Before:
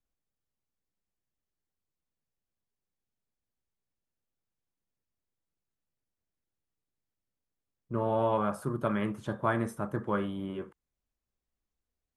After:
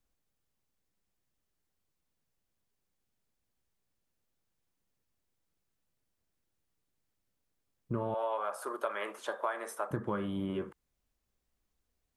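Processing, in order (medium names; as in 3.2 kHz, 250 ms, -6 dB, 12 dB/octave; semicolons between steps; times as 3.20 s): 8.14–9.91 s: high-pass 490 Hz 24 dB/octave; compression 6:1, threshold -37 dBFS, peak gain reduction 12.5 dB; trim +6 dB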